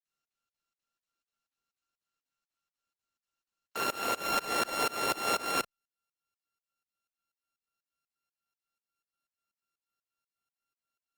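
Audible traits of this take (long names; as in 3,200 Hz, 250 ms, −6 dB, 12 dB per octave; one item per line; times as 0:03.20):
a buzz of ramps at a fixed pitch in blocks of 32 samples
tremolo saw up 4.1 Hz, depth 100%
Opus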